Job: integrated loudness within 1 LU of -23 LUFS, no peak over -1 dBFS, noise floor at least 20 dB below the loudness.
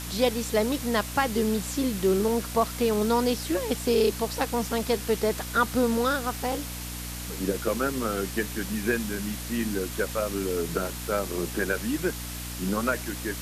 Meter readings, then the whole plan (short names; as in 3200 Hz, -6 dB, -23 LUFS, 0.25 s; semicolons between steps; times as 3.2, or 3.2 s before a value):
hum 60 Hz; harmonics up to 300 Hz; hum level -36 dBFS; noise floor -36 dBFS; noise floor target -48 dBFS; loudness -27.5 LUFS; peak -10.5 dBFS; loudness target -23.0 LUFS
-> de-hum 60 Hz, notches 5; denoiser 12 dB, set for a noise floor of -36 dBFS; gain +4.5 dB